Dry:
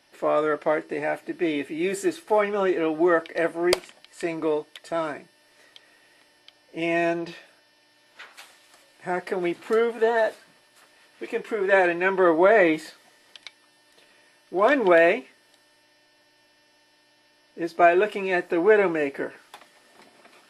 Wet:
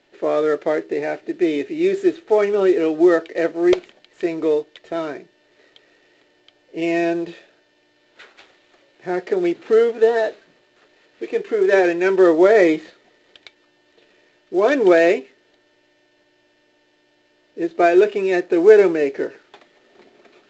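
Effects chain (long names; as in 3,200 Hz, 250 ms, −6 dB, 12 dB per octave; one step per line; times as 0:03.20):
running median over 9 samples
graphic EQ with 15 bands 400 Hz +9 dB, 1,000 Hz −5 dB, 4,000 Hz +5 dB
level +1 dB
mu-law 128 kbit/s 16,000 Hz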